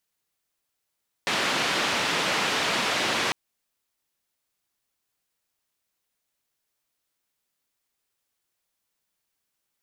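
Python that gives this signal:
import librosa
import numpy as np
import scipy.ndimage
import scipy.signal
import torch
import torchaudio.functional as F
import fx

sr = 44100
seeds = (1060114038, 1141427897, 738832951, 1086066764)

y = fx.band_noise(sr, seeds[0], length_s=2.05, low_hz=170.0, high_hz=3300.0, level_db=-25.5)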